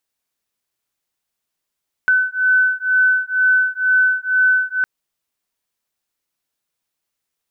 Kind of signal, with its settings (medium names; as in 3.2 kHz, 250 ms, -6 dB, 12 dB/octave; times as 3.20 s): beating tones 1.51 kHz, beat 2.1 Hz, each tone -16 dBFS 2.76 s